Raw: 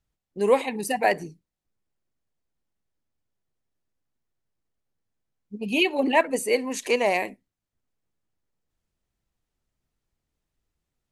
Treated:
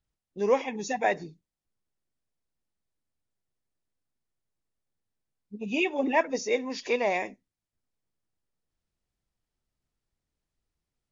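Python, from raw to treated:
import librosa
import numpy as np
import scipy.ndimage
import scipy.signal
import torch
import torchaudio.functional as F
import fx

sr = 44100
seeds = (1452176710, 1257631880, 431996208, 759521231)

y = fx.freq_compress(x, sr, knee_hz=2500.0, ratio=1.5)
y = y * 10.0 ** (-4.0 / 20.0)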